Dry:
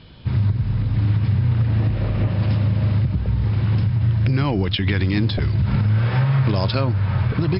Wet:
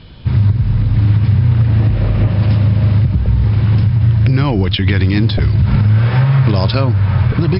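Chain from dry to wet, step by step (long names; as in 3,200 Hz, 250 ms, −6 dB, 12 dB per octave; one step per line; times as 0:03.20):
low-shelf EQ 70 Hz +7 dB
level +5 dB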